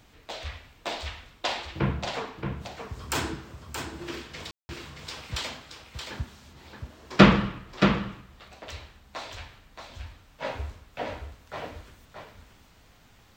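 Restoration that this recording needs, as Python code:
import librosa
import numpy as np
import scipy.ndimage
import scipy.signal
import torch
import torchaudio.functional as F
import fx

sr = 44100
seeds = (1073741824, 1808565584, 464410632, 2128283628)

y = fx.fix_declick_ar(x, sr, threshold=6.5)
y = fx.fix_ambience(y, sr, seeds[0], print_start_s=12.85, print_end_s=13.35, start_s=4.51, end_s=4.69)
y = fx.fix_echo_inverse(y, sr, delay_ms=625, level_db=-6.5)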